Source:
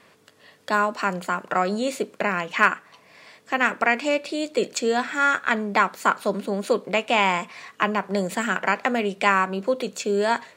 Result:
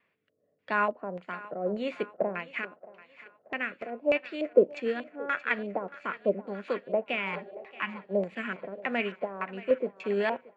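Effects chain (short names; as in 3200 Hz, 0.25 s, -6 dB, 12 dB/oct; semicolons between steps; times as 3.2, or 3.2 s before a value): limiter -10.5 dBFS, peak gain reduction 7 dB; spectral repair 7.28–7.99, 330–830 Hz both; LFO low-pass square 1.7 Hz 590–2400 Hz; rotary speaker horn 0.85 Hz; on a send: thinning echo 0.627 s, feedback 66%, high-pass 460 Hz, level -11.5 dB; on the sum: upward expander 1.5:1, over -47 dBFS; gain -1.5 dB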